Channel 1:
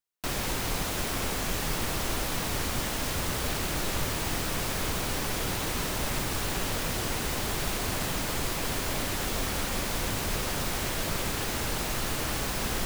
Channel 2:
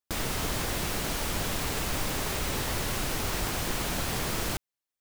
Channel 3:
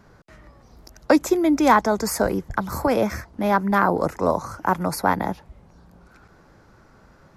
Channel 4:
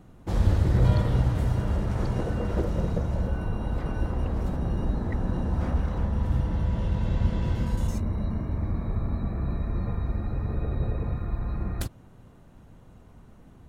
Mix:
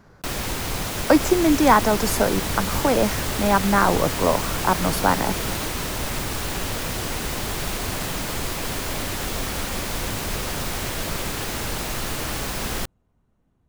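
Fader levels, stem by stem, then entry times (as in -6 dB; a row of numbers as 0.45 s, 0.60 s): +3.0 dB, -2.0 dB, +0.5 dB, -16.5 dB; 0.00 s, 1.10 s, 0.00 s, 0.00 s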